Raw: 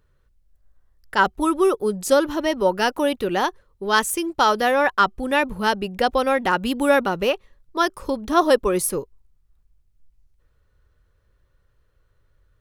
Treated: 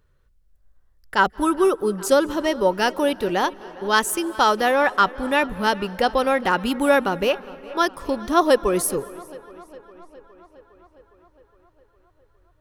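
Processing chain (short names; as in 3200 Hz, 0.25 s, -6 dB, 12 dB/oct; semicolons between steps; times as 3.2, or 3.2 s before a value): tape echo 0.41 s, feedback 72%, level -20 dB, low-pass 5200 Hz; on a send at -21.5 dB: reverb RT60 2.1 s, pre-delay 0.161 s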